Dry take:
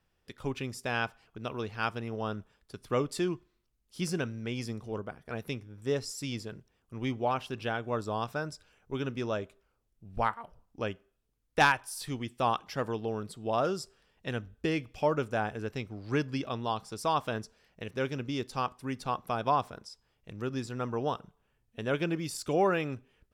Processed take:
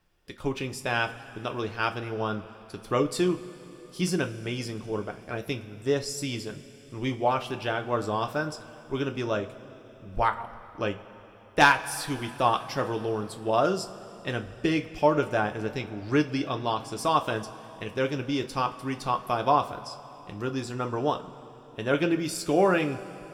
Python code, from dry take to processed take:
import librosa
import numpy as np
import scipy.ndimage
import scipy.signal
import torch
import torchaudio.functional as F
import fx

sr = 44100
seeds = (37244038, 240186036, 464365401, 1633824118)

y = fx.rev_double_slope(x, sr, seeds[0], early_s=0.21, late_s=3.9, knee_db=-21, drr_db=5.0)
y = y * 10.0 ** (4.0 / 20.0)